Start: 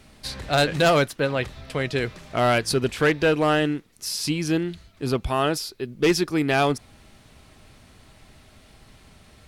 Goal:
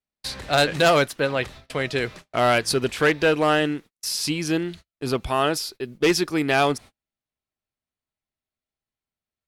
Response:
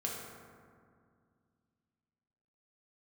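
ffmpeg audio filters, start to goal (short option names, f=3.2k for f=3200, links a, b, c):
-af "lowshelf=f=250:g=-6.5,agate=range=-42dB:threshold=-41dB:ratio=16:detection=peak,volume=2dB"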